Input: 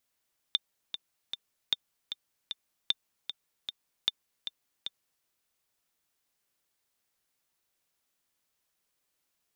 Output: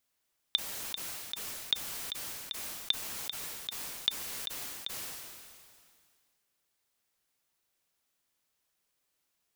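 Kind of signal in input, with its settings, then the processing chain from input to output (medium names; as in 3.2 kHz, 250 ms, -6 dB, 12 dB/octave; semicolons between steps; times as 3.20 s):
metronome 153 bpm, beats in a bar 3, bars 4, 3.59 kHz, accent 9.5 dB -12 dBFS
decay stretcher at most 28 dB/s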